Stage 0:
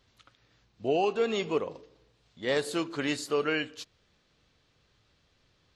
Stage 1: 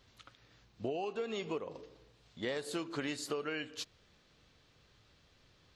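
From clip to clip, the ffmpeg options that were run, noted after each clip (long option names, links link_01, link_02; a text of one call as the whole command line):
ffmpeg -i in.wav -af "acompressor=threshold=-36dB:ratio=12,volume=2dB" out.wav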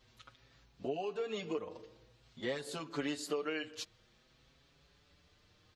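ffmpeg -i in.wav -filter_complex "[0:a]asplit=2[link_01][link_02];[link_02]adelay=5.9,afreqshift=0.5[link_03];[link_01][link_03]amix=inputs=2:normalize=1,volume=2dB" out.wav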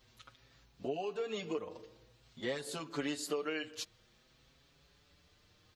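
ffmpeg -i in.wav -af "highshelf=frequency=8800:gain=7.5" out.wav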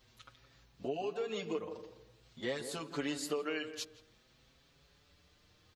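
ffmpeg -i in.wav -filter_complex "[0:a]asplit=2[link_01][link_02];[link_02]adelay=168,lowpass=frequency=1100:poles=1,volume=-10dB,asplit=2[link_03][link_04];[link_04]adelay=168,lowpass=frequency=1100:poles=1,volume=0.28,asplit=2[link_05][link_06];[link_06]adelay=168,lowpass=frequency=1100:poles=1,volume=0.28[link_07];[link_01][link_03][link_05][link_07]amix=inputs=4:normalize=0" out.wav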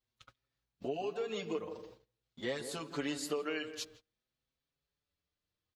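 ffmpeg -i in.wav -af "agate=range=-24dB:threshold=-55dB:ratio=16:detection=peak" out.wav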